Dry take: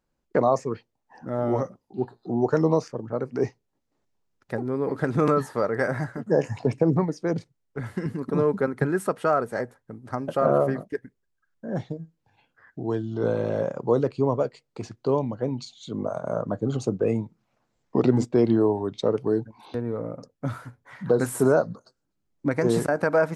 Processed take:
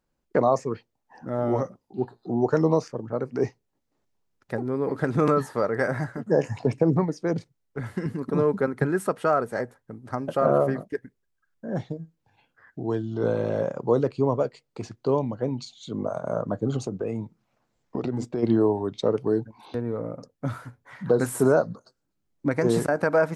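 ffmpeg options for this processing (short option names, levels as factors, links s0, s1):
-filter_complex "[0:a]asplit=3[s0][s1][s2];[s0]afade=t=out:st=16.83:d=0.02[s3];[s1]acompressor=threshold=0.0501:ratio=3:attack=3.2:release=140:knee=1:detection=peak,afade=t=in:st=16.83:d=0.02,afade=t=out:st=18.42:d=0.02[s4];[s2]afade=t=in:st=18.42:d=0.02[s5];[s3][s4][s5]amix=inputs=3:normalize=0"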